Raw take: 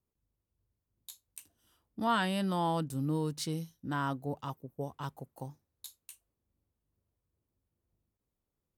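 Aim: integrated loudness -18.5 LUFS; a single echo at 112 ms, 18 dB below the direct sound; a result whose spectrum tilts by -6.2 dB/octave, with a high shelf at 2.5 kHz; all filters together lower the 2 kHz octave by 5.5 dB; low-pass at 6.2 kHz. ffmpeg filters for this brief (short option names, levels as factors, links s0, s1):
-af "lowpass=6200,equalizer=f=2000:t=o:g=-6.5,highshelf=f=2500:g=-4,aecho=1:1:112:0.126,volume=7.5"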